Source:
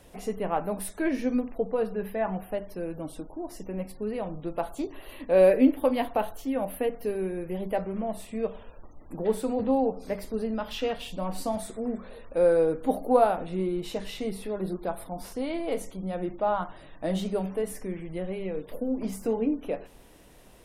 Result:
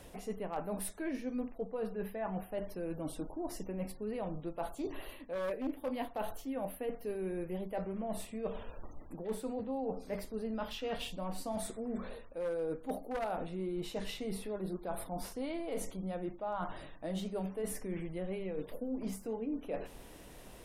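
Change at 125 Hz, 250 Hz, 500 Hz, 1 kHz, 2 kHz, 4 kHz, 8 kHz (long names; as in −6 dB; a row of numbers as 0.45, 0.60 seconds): −6.5, −9.5, −11.5, −10.5, −8.5, −5.5, −3.5 decibels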